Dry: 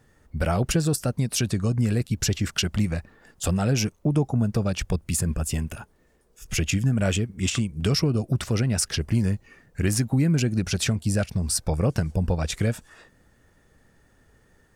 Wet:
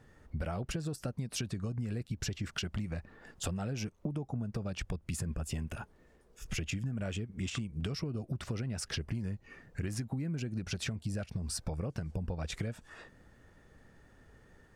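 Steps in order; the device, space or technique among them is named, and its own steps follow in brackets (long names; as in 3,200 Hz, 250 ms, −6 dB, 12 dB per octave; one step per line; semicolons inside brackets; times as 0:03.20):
high-shelf EQ 6,600 Hz −11 dB
serial compression, peaks first (downward compressor, threshold −28 dBFS, peak gain reduction 11.5 dB; downward compressor 1.5 to 1, threshold −41 dBFS, peak gain reduction 6 dB)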